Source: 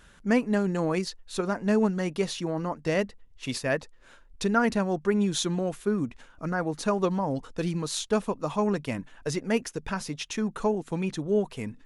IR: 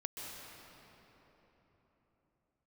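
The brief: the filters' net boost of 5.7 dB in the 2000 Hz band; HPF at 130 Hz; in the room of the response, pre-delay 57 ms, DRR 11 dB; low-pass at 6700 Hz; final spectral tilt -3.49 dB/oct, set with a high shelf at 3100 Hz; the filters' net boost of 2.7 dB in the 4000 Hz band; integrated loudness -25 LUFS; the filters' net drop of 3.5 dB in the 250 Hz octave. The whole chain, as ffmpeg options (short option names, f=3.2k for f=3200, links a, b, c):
-filter_complex "[0:a]highpass=130,lowpass=6.7k,equalizer=f=250:t=o:g=-4,equalizer=f=2k:t=o:g=8,highshelf=f=3.1k:g=-5,equalizer=f=4k:t=o:g=5,asplit=2[a][b];[1:a]atrim=start_sample=2205,adelay=57[c];[b][c]afir=irnorm=-1:irlink=0,volume=-11dB[d];[a][d]amix=inputs=2:normalize=0,volume=3.5dB"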